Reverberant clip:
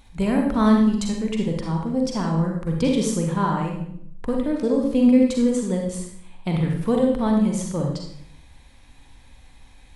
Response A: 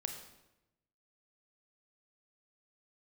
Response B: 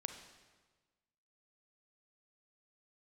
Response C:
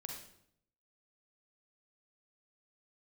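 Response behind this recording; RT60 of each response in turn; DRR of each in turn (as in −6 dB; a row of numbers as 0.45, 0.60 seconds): C; 0.95, 1.4, 0.70 seconds; 4.5, 6.5, 0.5 decibels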